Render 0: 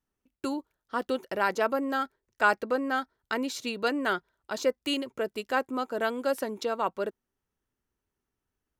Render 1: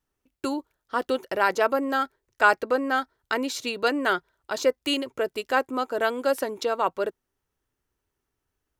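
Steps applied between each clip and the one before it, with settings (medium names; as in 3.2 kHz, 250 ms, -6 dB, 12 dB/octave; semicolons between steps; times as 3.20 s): peaking EQ 210 Hz -8 dB 0.42 oct; trim +4.5 dB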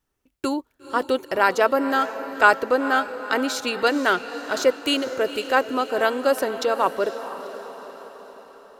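echo that smears into a reverb 482 ms, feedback 55%, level -12 dB; trim +3.5 dB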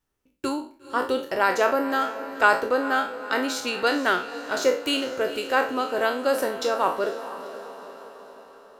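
spectral sustain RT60 0.39 s; trim -3.5 dB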